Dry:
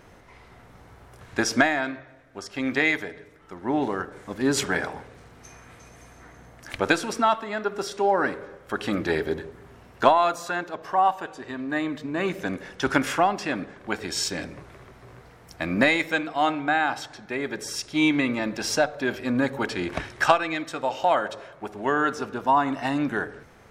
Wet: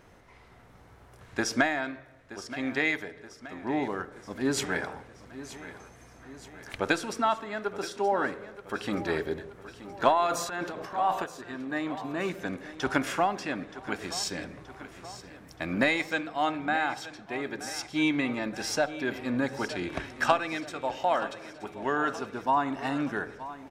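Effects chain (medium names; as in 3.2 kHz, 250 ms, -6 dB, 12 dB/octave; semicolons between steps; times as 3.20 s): 10.26–11.24 s: transient shaper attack -8 dB, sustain +10 dB; feedback delay 925 ms, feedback 56%, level -15 dB; trim -5 dB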